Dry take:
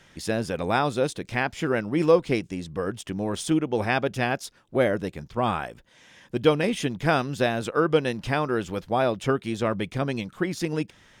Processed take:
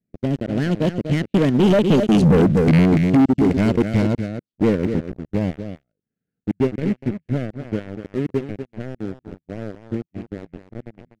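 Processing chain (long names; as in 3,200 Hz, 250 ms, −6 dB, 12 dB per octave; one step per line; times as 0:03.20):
loose part that buzzes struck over −31 dBFS, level −18 dBFS
source passing by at 0:02.32, 59 m/s, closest 8.1 metres
parametric band 220 Hz +14.5 dB 2.5 octaves
low-pass that shuts in the quiet parts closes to 1,400 Hz, open at −24.5 dBFS
transient designer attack +1 dB, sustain −11 dB
leveller curve on the samples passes 3
Butterworth band-reject 1,000 Hz, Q 1.2
single-tap delay 244 ms −11 dB
brickwall limiter −13.5 dBFS, peak gain reduction 8 dB
low-pass filter 11,000 Hz
bass and treble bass +6 dB, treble +3 dB
leveller curve on the samples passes 2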